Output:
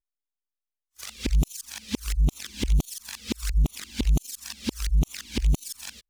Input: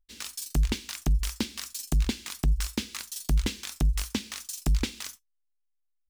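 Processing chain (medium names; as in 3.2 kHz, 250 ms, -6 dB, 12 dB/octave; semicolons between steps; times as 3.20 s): reverse the whole clip; touch-sensitive flanger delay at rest 2.8 ms, full sweep at -24 dBFS; gate -52 dBFS, range -17 dB; trim +2.5 dB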